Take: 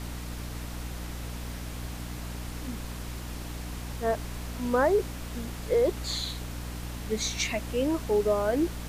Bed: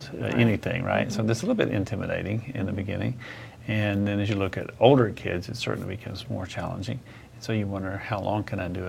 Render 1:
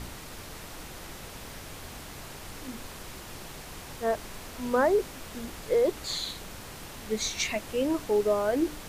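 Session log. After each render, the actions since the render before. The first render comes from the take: de-hum 60 Hz, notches 5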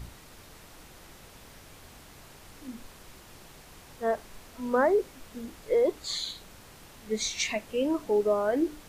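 noise print and reduce 8 dB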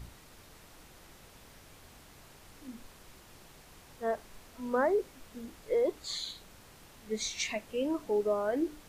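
trim -4.5 dB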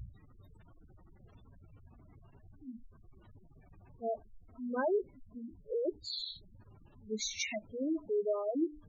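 spectral gate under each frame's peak -10 dB strong; graphic EQ with 31 bands 100 Hz +8 dB, 500 Hz -8 dB, 800 Hz -4 dB

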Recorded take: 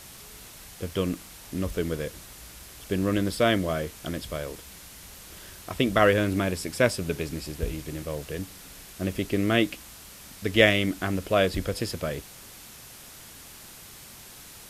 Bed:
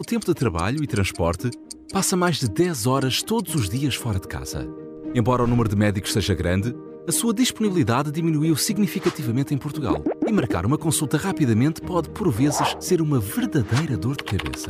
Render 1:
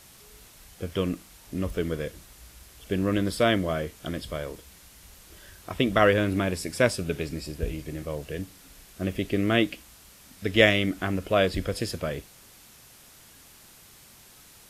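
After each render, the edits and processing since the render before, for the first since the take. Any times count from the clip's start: noise print and reduce 6 dB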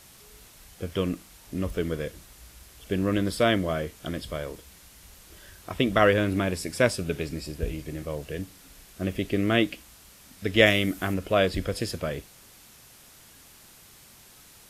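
10.66–11.14 s: treble shelf 9.1 kHz +11.5 dB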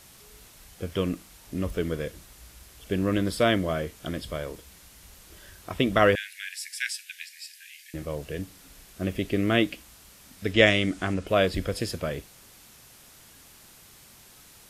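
6.15–7.94 s: steep high-pass 1.6 kHz 96 dB/octave; 10.53–11.27 s: low-pass 8.8 kHz 24 dB/octave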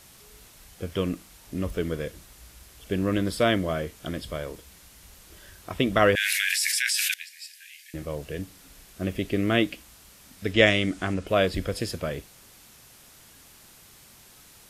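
6.14–7.14 s: level flattener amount 100%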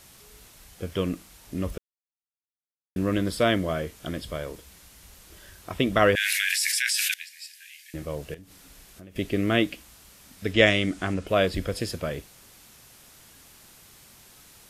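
1.78–2.96 s: mute; 8.34–9.16 s: compression, threshold -43 dBFS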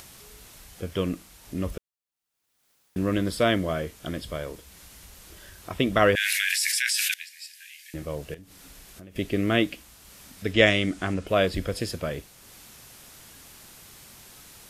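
upward compressor, threshold -42 dBFS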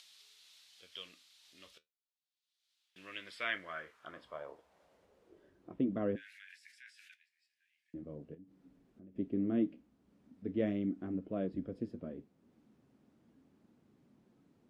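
flange 0.35 Hz, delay 5.5 ms, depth 9.6 ms, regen -60%; band-pass sweep 3.8 kHz -> 250 Hz, 2.74–5.86 s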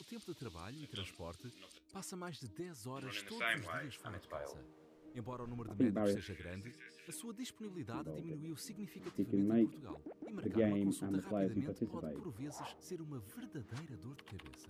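add bed -26.5 dB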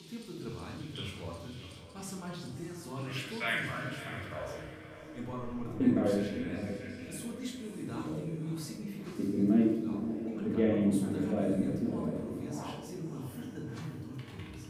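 on a send: echo that smears into a reverb 594 ms, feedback 42%, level -11.5 dB; on the sum: simulated room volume 260 m³, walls mixed, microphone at 1.6 m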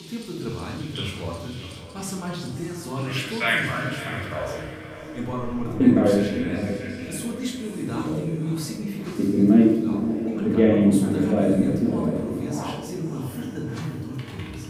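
trim +10.5 dB

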